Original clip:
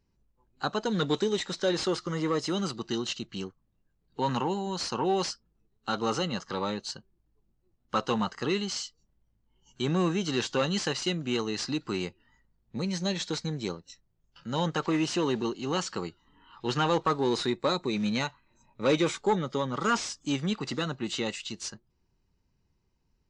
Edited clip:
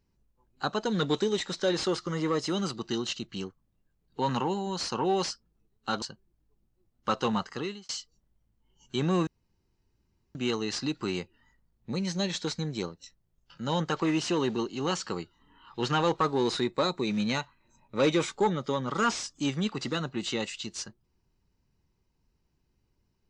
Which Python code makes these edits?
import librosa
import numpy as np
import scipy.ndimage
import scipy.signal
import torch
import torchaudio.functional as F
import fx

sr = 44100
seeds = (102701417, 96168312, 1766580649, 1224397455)

y = fx.edit(x, sr, fx.cut(start_s=6.02, length_s=0.86),
    fx.fade_out_span(start_s=8.28, length_s=0.47),
    fx.room_tone_fill(start_s=10.13, length_s=1.08), tone=tone)